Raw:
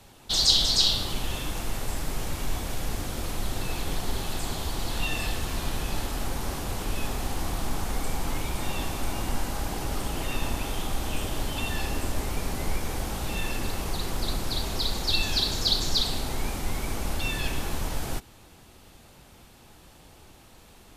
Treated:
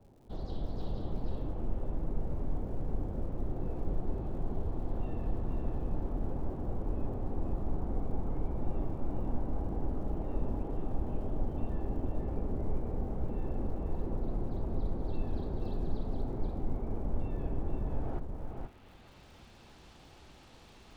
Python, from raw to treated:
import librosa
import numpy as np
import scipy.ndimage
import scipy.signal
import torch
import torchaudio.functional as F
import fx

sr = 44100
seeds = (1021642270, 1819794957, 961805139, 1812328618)

y = fx.filter_sweep_lowpass(x, sr, from_hz=530.0, to_hz=5200.0, start_s=17.84, end_s=19.25, q=0.87)
y = fx.dmg_crackle(y, sr, seeds[0], per_s=190.0, level_db=-53.0)
y = y + 10.0 ** (-4.5 / 20.0) * np.pad(y, (int(479 * sr / 1000.0), 0))[:len(y)]
y = F.gain(torch.from_numpy(y), -4.5).numpy()